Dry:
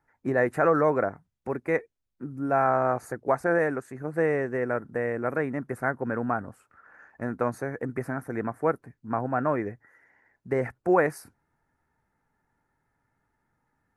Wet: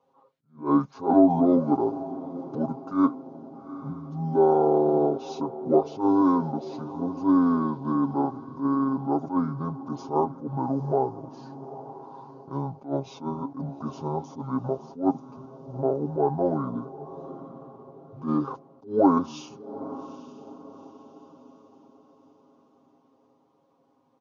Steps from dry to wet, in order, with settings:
wrong playback speed 78 rpm record played at 45 rpm
comb filter 7.4 ms, depth 92%
in parallel at −2 dB: downward compressor, threshold −36 dBFS, peak gain reduction 21.5 dB
on the sum: band-pass filter 210–4,200 Hz
on a send: feedback delay with all-pass diffusion 844 ms, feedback 43%, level −15.5 dB
on the sum: level that may rise only so fast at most 200 dB per second

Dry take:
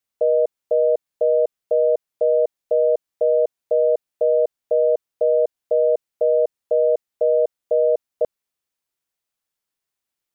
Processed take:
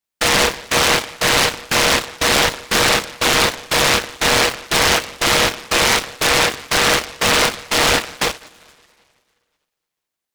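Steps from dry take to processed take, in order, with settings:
phase distortion by the signal itself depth 0.28 ms
coupled-rooms reverb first 0.31 s, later 2 s, from −21 dB, DRR −3.5 dB
in parallel at −6 dB: comparator with hysteresis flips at −22 dBFS
on the sum: high-pass filter 300 Hz 12 dB per octave
short delay modulated by noise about 1,400 Hz, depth 0.47 ms
level −2.5 dB

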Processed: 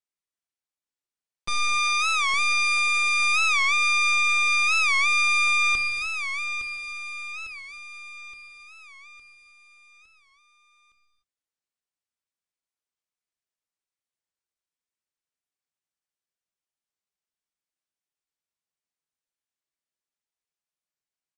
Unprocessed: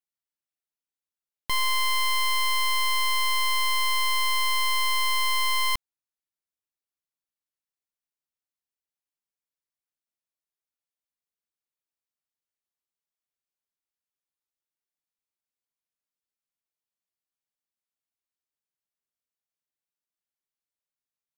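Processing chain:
Chebyshev low-pass filter 8,400 Hz, order 8
mains-hum notches 60/120/180/240 Hz
pitch shifter +2.5 semitones
repeating echo 861 ms, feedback 51%, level −9.5 dB
on a send at −6 dB: convolution reverb, pre-delay 3 ms
on the sum: wow of a warped record 45 rpm, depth 160 cents

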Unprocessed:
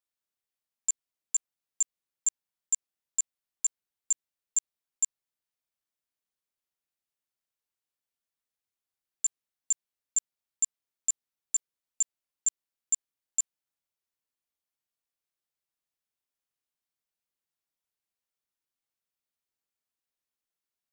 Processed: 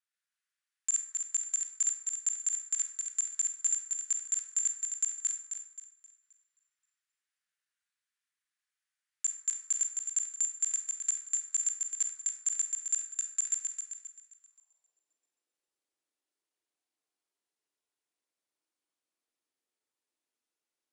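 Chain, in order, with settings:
feedback delay that plays each chunk backwards 132 ms, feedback 60%, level −0.5 dB
Butterworth low-pass 11,000 Hz 72 dB per octave
in parallel at −1.5 dB: output level in coarse steps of 21 dB
on the sum: high-pass filter sweep 1,600 Hz → 310 Hz, 0:14.37–0:15.06
0:11.55–0:12.93: floating-point word with a short mantissa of 8 bits
on a send at −5 dB: convolution reverb RT60 0.80 s, pre-delay 27 ms
on the sum: level −5 dB

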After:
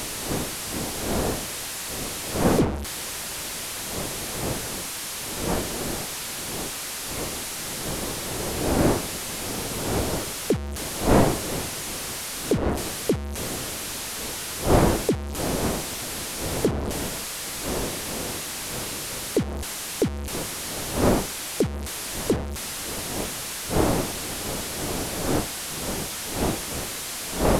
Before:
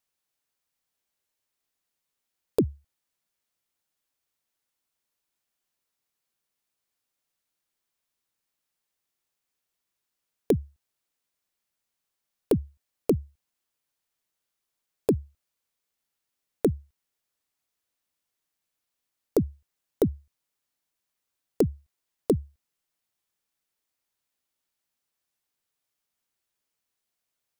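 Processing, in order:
linear delta modulator 64 kbit/s, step −25 dBFS
wind on the microphone 510 Hz −29 dBFS

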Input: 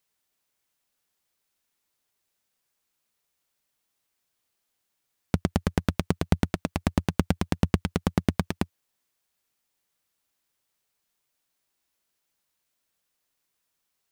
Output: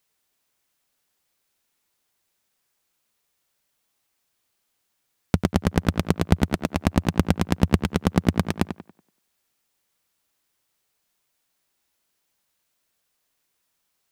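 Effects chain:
tape delay 93 ms, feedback 37%, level −7.5 dB, low-pass 3,100 Hz
level +4 dB

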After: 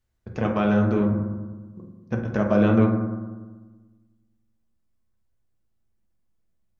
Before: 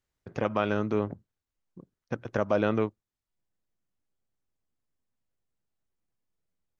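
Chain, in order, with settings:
low-shelf EQ 130 Hz +11.5 dB
convolution reverb RT60 1.3 s, pre-delay 5 ms, DRR 0.5 dB

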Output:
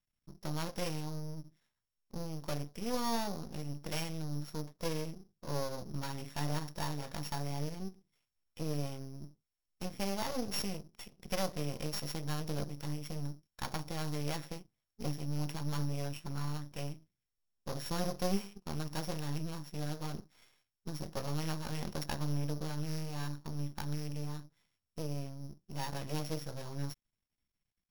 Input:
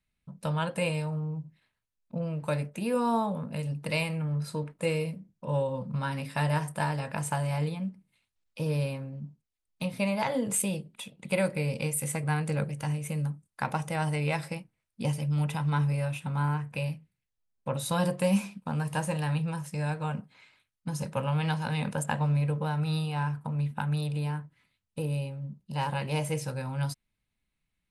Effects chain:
samples sorted by size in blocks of 8 samples
half-wave rectification
level −3.5 dB

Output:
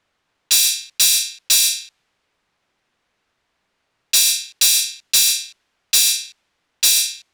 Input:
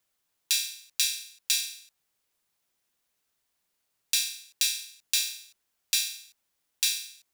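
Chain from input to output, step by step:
in parallel at −1.5 dB: compressor whose output falls as the input rises −36 dBFS, ratio −1
on the sum: low-pass that shuts in the quiet parts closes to 2,000 Hz, open at −22 dBFS
gain into a clipping stage and back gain 22 dB
high-shelf EQ 4,000 Hz +12 dB
level +5.5 dB

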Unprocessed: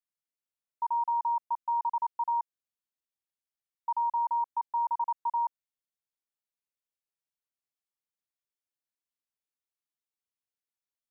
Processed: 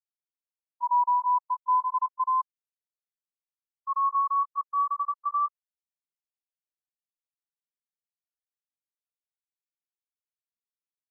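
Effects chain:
pitch glide at a constant tempo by +7.5 semitones starting unshifted
high-pass with resonance 900 Hz, resonance Q 2.2
every bin expanded away from the loudest bin 1.5 to 1

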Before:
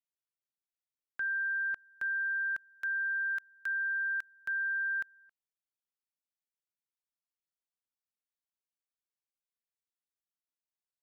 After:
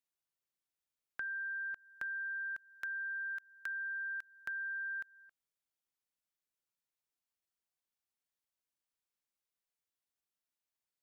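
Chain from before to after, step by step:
downward compressor, threshold −40 dBFS, peak gain reduction 8 dB
level +1 dB

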